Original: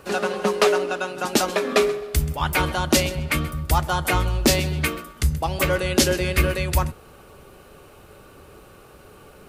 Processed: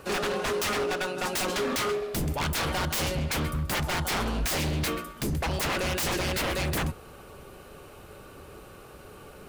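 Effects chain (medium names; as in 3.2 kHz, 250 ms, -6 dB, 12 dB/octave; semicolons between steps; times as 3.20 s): self-modulated delay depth 0.1 ms; wavefolder -23 dBFS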